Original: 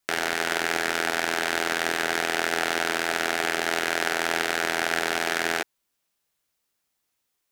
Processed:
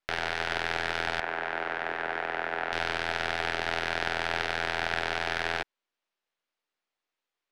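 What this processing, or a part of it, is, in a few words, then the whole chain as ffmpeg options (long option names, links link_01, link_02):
crystal radio: -filter_complex "[0:a]highpass=310,lowpass=3500,aeval=exprs='if(lt(val(0),0),0.447*val(0),val(0))':channel_layout=same,asettb=1/sr,asplit=3[link_01][link_02][link_03];[link_01]atrim=end=1.204[link_04];[link_02]atrim=start=1.2:end=2.73,asetpts=PTS-STARTPTS,afade=type=in:duration=0.004:curve=qsin,afade=type=out:start_time=1.526:duration=0.004:curve=qsin,acrossover=split=210 2400:gain=0.224 1 0.141[link_05][link_06][link_07];[link_05][link_06][link_07]amix=inputs=3:normalize=0[link_08];[link_03]atrim=start=2.726[link_09];[link_04][link_08]acrossfade=duration=0.004:curve1=hsin:curve2=qsin[link_10];[link_10][link_09]acrossfade=duration=0.004:curve1=qsin:curve2=hsin,volume=-1.5dB"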